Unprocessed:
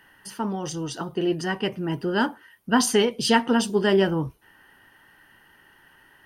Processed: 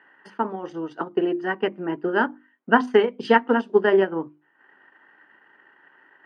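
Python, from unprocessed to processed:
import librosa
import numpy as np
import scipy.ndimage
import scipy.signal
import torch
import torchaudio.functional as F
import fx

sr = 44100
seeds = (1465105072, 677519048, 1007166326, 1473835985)

y = fx.transient(x, sr, attack_db=6, sustain_db=-10)
y = scipy.signal.sosfilt(scipy.signal.cheby1(2, 1.0, [300.0, 1800.0], 'bandpass', fs=sr, output='sos'), y)
y = fx.hum_notches(y, sr, base_hz=50, count=7)
y = y * librosa.db_to_amplitude(1.5)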